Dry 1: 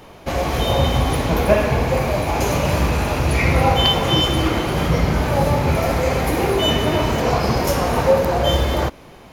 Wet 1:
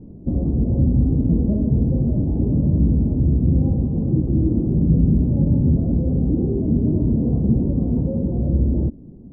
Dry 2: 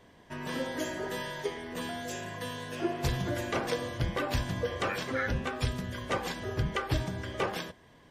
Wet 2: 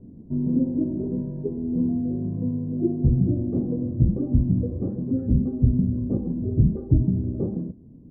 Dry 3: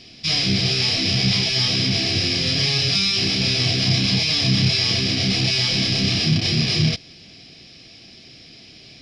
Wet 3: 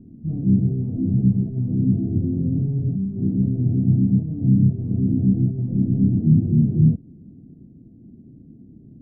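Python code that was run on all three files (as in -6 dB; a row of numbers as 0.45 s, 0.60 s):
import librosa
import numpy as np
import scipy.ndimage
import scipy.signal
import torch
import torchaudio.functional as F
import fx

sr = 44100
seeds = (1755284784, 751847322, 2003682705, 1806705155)

p1 = fx.rider(x, sr, range_db=4, speed_s=0.5)
p2 = x + (p1 * 10.0 ** (2.5 / 20.0))
p3 = 10.0 ** (-4.0 / 20.0) * np.tanh(p2 / 10.0 ** (-4.0 / 20.0))
p4 = fx.ladder_lowpass(p3, sr, hz=300.0, resonance_pct=40)
y = librosa.util.normalize(p4) * 10.0 ** (-6 / 20.0)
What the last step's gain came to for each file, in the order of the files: +3.5 dB, +12.5 dB, +4.0 dB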